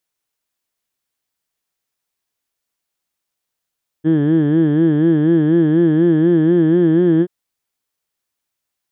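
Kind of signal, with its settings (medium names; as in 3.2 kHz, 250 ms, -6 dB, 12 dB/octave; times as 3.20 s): formant vowel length 3.23 s, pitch 152 Hz, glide +2 st, vibrato 4.1 Hz, vibrato depth 1.15 st, F1 340 Hz, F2 1.7 kHz, F3 3.2 kHz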